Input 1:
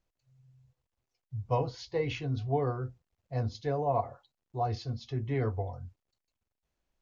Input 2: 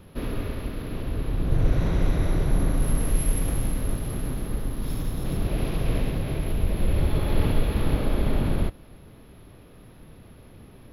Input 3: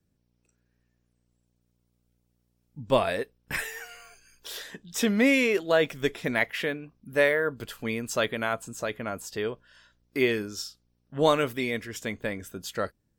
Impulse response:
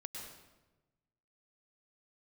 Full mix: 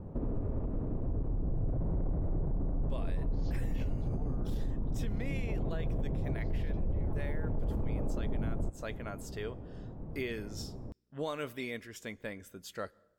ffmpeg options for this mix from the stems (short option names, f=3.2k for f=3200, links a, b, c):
-filter_complex "[0:a]acompressor=threshold=-34dB:ratio=6,adelay=1650,volume=-3dB[a];[1:a]lowshelf=f=480:g=10.5,alimiter=limit=-9dB:level=0:latency=1:release=18,lowpass=f=830:t=q:w=1.6,volume=-5dB[b];[2:a]volume=-10dB,asplit=3[c][d][e];[d]volume=-22dB[f];[e]apad=whole_len=381976[g];[a][g]sidechaincompress=threshold=-41dB:ratio=8:attack=16:release=165[h];[3:a]atrim=start_sample=2205[i];[f][i]afir=irnorm=-1:irlink=0[j];[h][b][c][j]amix=inputs=4:normalize=0,alimiter=level_in=2dB:limit=-24dB:level=0:latency=1:release=176,volume=-2dB"